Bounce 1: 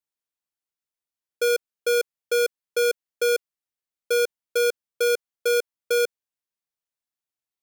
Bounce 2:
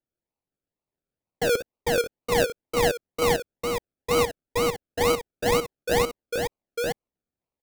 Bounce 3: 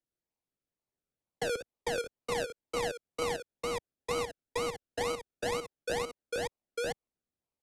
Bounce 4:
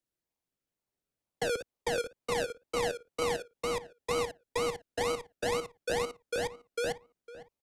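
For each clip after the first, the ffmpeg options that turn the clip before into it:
-filter_complex "[0:a]asplit=2[a][b];[b]aecho=0:1:59|869:0.299|0.668[c];[a][c]amix=inputs=2:normalize=0,acrusher=samples=36:mix=1:aa=0.000001:lfo=1:lforange=21.6:lforate=2.1,volume=-2.5dB"
-filter_complex "[0:a]lowpass=f=11k:w=0.5412,lowpass=f=11k:w=1.3066,acrossover=split=110|400[a][b][c];[a]acompressor=threshold=-46dB:ratio=4[d];[b]acompressor=threshold=-40dB:ratio=4[e];[c]acompressor=threshold=-28dB:ratio=4[f];[d][e][f]amix=inputs=3:normalize=0,volume=-4dB"
-filter_complex "[0:a]asplit=2[a][b];[b]adelay=505,lowpass=f=2.2k:p=1,volume=-15.5dB,asplit=2[c][d];[d]adelay=505,lowpass=f=2.2k:p=1,volume=0.24[e];[a][c][e]amix=inputs=3:normalize=0,volume=1.5dB"

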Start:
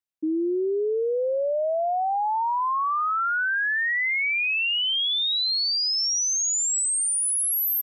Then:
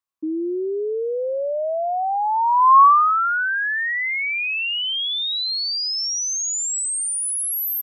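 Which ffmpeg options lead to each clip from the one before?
-af "equalizer=f=1.1k:w=3.8:g=15"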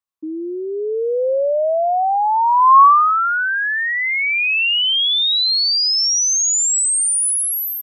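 -af "dynaudnorm=f=660:g=3:m=10dB,volume=-2.5dB"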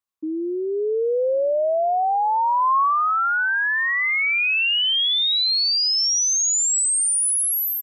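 -filter_complex "[0:a]asplit=2[a][b];[b]adelay=1108,volume=-25dB,highshelf=f=4k:g=-24.9[c];[a][c]amix=inputs=2:normalize=0,acompressor=threshold=-19dB:ratio=4"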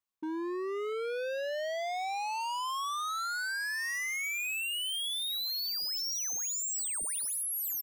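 -af "volume=31dB,asoftclip=hard,volume=-31dB,volume=-3dB"

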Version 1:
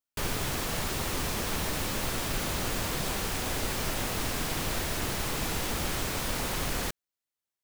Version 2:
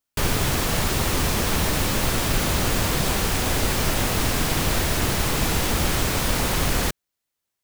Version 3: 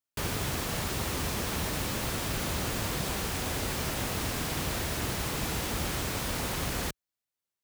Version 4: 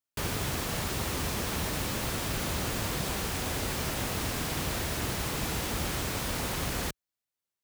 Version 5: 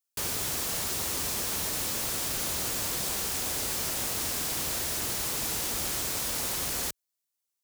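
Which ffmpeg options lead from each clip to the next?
-af "equalizer=f=66:w=0.36:g=3.5,volume=8dB"
-af "highpass=45,volume=-9dB"
-af anull
-af "bass=f=250:g=-6,treble=f=4k:g=10,volume=-3dB"

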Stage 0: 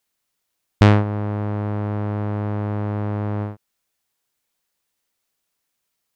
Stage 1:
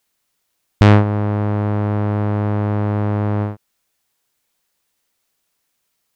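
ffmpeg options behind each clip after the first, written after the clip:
-af "alimiter=level_in=6.5dB:limit=-1dB:release=50:level=0:latency=1,volume=-1dB"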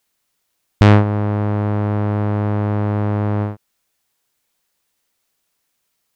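-af anull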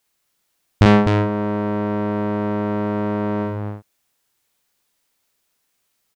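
-af "aecho=1:1:43.73|253.6:0.631|0.501,volume=-1.5dB"

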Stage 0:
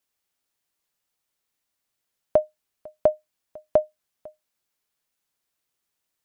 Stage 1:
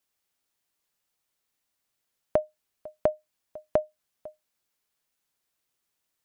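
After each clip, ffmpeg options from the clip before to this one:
-af "acompressor=threshold=-24dB:ratio=2"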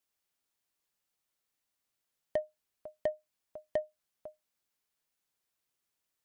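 -af "asoftclip=type=tanh:threshold=-18dB,volume=-4.5dB"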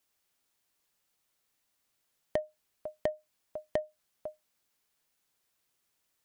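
-af "acompressor=threshold=-35dB:ratio=4,volume=6.5dB"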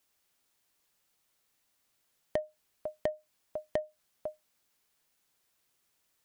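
-af "alimiter=limit=-19.5dB:level=0:latency=1:release=241,volume=2.5dB"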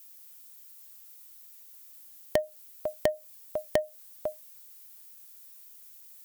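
-af "aemphasis=mode=production:type=75fm,volume=6.5dB"

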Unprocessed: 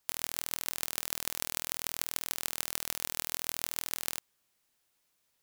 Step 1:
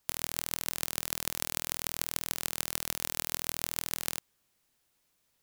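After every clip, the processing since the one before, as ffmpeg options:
-af "lowshelf=f=330:g=6,volume=1dB"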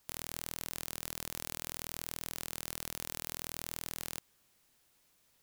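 -af "alimiter=limit=-8.5dB:level=0:latency=1:release=106,asoftclip=type=tanh:threshold=-16dB,volume=4dB"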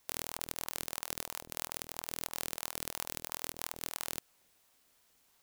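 -af "aeval=exprs='val(0)*sin(2*PI*620*n/s+620*0.6/3*sin(2*PI*3*n/s))':c=same,volume=4dB"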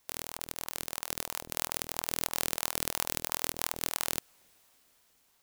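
-af "dynaudnorm=f=500:g=5:m=11.5dB"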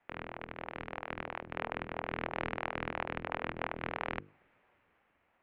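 -af "highpass=f=220:t=q:w=0.5412,highpass=f=220:t=q:w=1.307,lowpass=f=2.6k:t=q:w=0.5176,lowpass=f=2.6k:t=q:w=0.7071,lowpass=f=2.6k:t=q:w=1.932,afreqshift=-180,bandreject=f=50:t=h:w=6,bandreject=f=100:t=h:w=6,bandreject=f=150:t=h:w=6,bandreject=f=200:t=h:w=6,bandreject=f=250:t=h:w=6,bandreject=f=300:t=h:w=6,bandreject=f=350:t=h:w=6,bandreject=f=400:t=h:w=6,bandreject=f=450:t=h:w=6,bandreject=f=500:t=h:w=6,volume=3dB"

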